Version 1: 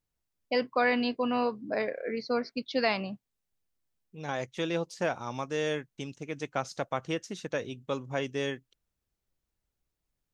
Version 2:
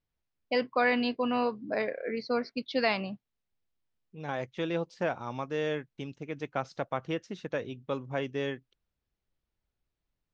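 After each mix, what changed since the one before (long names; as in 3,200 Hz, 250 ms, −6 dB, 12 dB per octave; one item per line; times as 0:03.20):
first voice: add high-shelf EQ 3,300 Hz +8.5 dB
master: add high-frequency loss of the air 180 metres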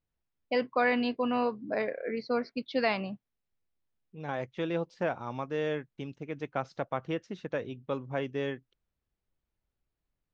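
master: add high-shelf EQ 4,300 Hz −8 dB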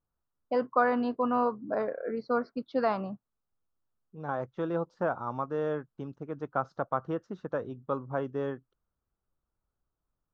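master: add high shelf with overshoot 1,700 Hz −9 dB, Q 3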